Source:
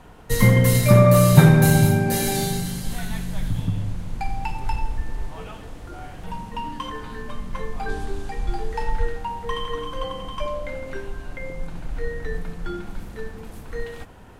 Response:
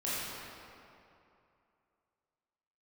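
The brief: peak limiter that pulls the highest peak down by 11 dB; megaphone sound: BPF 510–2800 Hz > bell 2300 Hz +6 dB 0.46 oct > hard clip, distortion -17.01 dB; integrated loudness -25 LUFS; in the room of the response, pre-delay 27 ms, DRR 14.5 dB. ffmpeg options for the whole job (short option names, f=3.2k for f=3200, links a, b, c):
-filter_complex "[0:a]alimiter=limit=-12dB:level=0:latency=1,asplit=2[a][b];[1:a]atrim=start_sample=2205,adelay=27[c];[b][c]afir=irnorm=-1:irlink=0,volume=-21dB[d];[a][d]amix=inputs=2:normalize=0,highpass=510,lowpass=2.8k,equalizer=f=2.3k:t=o:w=0.46:g=6,asoftclip=type=hard:threshold=-24dB,volume=8dB"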